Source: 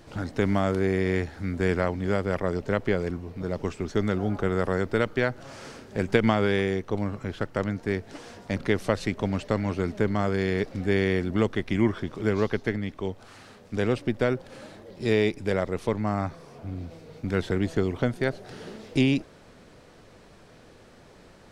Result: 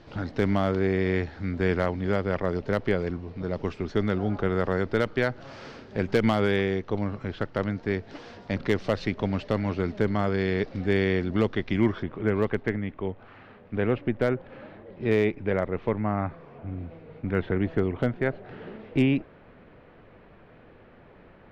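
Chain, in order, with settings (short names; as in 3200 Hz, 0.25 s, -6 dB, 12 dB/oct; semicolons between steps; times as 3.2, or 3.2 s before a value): LPF 4900 Hz 24 dB/oct, from 12.03 s 2700 Hz; hard clip -12.5 dBFS, distortion -23 dB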